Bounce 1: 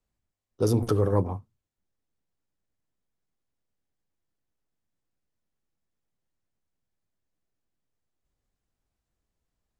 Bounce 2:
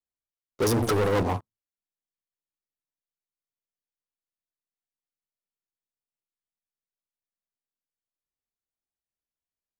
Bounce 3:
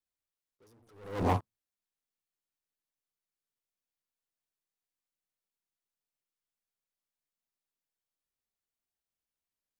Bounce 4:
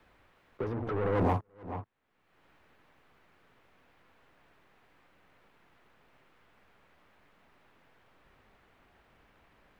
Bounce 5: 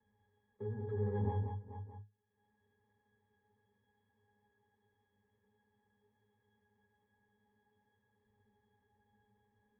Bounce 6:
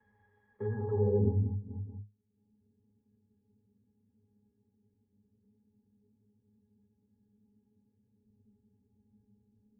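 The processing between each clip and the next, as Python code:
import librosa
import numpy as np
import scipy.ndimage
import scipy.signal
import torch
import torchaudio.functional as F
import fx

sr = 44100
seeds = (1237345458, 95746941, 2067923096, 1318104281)

y1 = fx.low_shelf(x, sr, hz=220.0, db=-11.0)
y1 = fx.leveller(y1, sr, passes=5)
y1 = y1 * librosa.db_to_amplitude(-4.5)
y2 = fx.attack_slew(y1, sr, db_per_s=100.0)
y3 = y2 + 10.0 ** (-23.0 / 20.0) * np.pad(y2, (int(432 * sr / 1000.0), 0))[:len(y2)]
y3 = fx.band_squash(y3, sr, depth_pct=100)
y3 = y3 * librosa.db_to_amplitude(6.5)
y4 = fx.octave_resonator(y3, sr, note='G#', decay_s=0.22)
y4 = y4 + 10.0 ** (-5.5 / 20.0) * np.pad(y4, (int(186 * sr / 1000.0), 0))[:len(y4)]
y4 = y4 * librosa.db_to_amplitude(1.5)
y5 = fx.filter_sweep_lowpass(y4, sr, from_hz=1800.0, to_hz=250.0, start_s=0.71, end_s=1.37, q=2.0)
y5 = y5 * librosa.db_to_amplitude(6.0)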